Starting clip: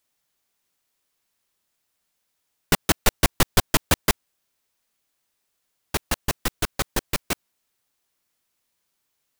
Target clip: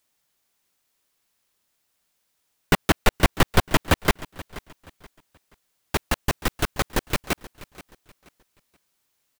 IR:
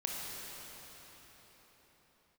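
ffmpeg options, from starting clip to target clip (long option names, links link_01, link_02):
-filter_complex "[0:a]acrossover=split=3400[link_01][link_02];[link_02]acompressor=threshold=-29dB:ratio=4:attack=1:release=60[link_03];[link_01][link_03]amix=inputs=2:normalize=0,asplit=2[link_04][link_05];[link_05]aecho=0:1:478|956|1434:0.119|0.0357|0.0107[link_06];[link_04][link_06]amix=inputs=2:normalize=0,volume=2.5dB"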